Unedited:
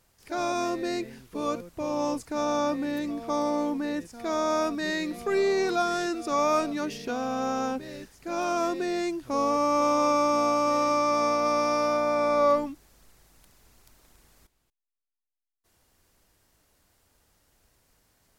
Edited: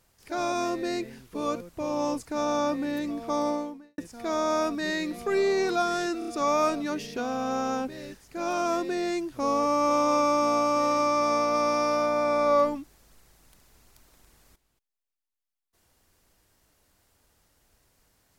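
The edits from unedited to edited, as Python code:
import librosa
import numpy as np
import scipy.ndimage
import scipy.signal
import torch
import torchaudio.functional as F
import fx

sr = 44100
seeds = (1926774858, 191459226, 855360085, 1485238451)

y = fx.edit(x, sr, fx.fade_out_span(start_s=3.5, length_s=0.48, curve='qua'),
    fx.stutter(start_s=6.19, slice_s=0.03, count=4), tone=tone)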